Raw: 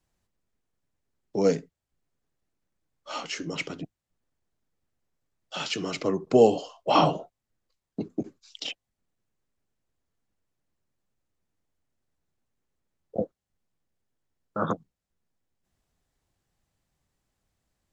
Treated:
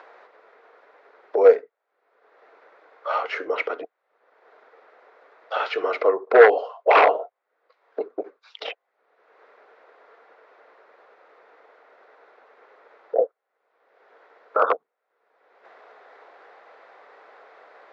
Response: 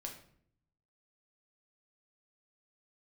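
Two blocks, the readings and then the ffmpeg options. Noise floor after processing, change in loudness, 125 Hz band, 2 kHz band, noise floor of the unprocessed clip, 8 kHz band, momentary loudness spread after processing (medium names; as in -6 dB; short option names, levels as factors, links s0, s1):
-79 dBFS, +6.5 dB, under -30 dB, +13.0 dB, under -85 dBFS, no reading, 20 LU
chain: -filter_complex "[0:a]equalizer=f=830:t=o:w=1.5:g=13,asplit=2[s0][s1];[s1]acompressor=mode=upward:threshold=0.158:ratio=2.5,volume=1.26[s2];[s0][s2]amix=inputs=2:normalize=0,aeval=exprs='1*(abs(mod(val(0)/1+3,4)-2)-1)':c=same,highpass=f=430:w=0.5412,highpass=f=430:w=1.3066,equalizer=f=450:t=q:w=4:g=9,equalizer=f=860:t=q:w=4:g=-5,equalizer=f=1400:t=q:w=4:g=6,equalizer=f=2000:t=q:w=4:g=4,equalizer=f=3000:t=q:w=4:g=-7,lowpass=f=3400:w=0.5412,lowpass=f=3400:w=1.3066,volume=0.398"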